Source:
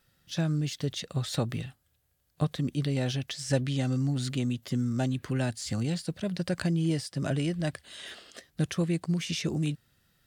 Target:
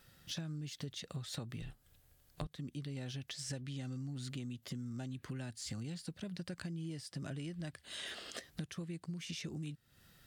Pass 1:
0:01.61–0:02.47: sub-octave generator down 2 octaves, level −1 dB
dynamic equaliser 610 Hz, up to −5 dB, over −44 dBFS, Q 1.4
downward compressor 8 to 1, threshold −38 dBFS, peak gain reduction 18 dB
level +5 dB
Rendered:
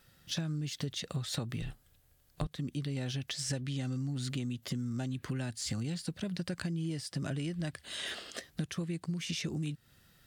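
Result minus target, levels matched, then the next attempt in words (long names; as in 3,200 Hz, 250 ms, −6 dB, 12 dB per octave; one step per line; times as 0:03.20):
downward compressor: peak gain reduction −7 dB
0:01.61–0:02.47: sub-octave generator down 2 octaves, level −1 dB
dynamic equaliser 610 Hz, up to −5 dB, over −44 dBFS, Q 1.4
downward compressor 8 to 1, threshold −46 dBFS, peak gain reduction 25 dB
level +5 dB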